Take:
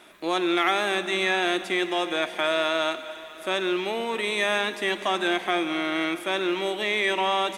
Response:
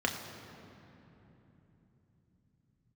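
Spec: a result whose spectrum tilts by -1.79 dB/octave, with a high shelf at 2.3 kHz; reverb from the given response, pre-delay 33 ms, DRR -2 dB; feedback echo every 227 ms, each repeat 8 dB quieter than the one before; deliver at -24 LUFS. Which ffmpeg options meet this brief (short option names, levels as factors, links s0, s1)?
-filter_complex "[0:a]highshelf=f=2300:g=-8,aecho=1:1:227|454|681|908|1135:0.398|0.159|0.0637|0.0255|0.0102,asplit=2[s0][s1];[1:a]atrim=start_sample=2205,adelay=33[s2];[s1][s2]afir=irnorm=-1:irlink=0,volume=0.473[s3];[s0][s3]amix=inputs=2:normalize=0,volume=0.891"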